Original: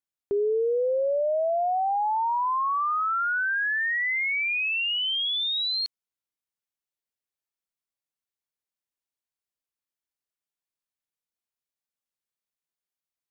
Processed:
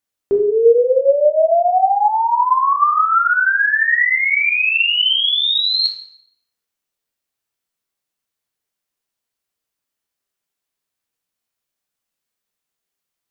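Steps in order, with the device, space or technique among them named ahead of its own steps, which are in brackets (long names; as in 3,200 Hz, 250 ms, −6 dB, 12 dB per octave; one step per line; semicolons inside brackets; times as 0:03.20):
bathroom (convolution reverb RT60 0.70 s, pre-delay 9 ms, DRR 1 dB)
level +8 dB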